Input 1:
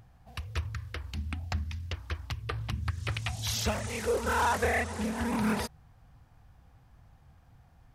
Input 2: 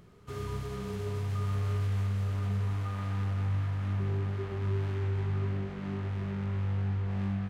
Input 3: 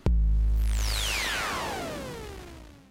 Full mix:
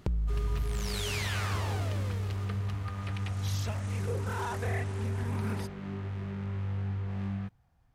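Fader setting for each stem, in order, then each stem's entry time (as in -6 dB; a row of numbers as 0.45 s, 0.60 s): -9.5 dB, -2.5 dB, -6.5 dB; 0.00 s, 0.00 s, 0.00 s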